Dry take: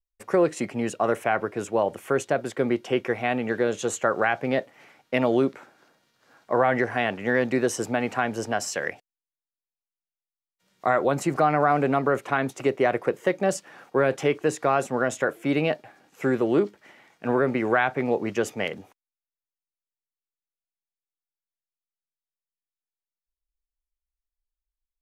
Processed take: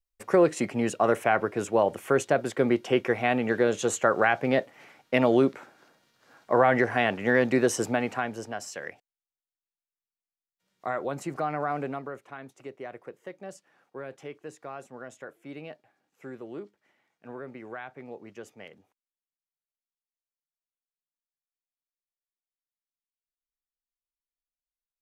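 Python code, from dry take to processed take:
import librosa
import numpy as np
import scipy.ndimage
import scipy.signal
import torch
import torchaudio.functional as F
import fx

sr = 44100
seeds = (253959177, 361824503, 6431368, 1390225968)

y = fx.gain(x, sr, db=fx.line((7.85, 0.5), (8.52, -9.0), (11.82, -9.0), (12.22, -18.0)))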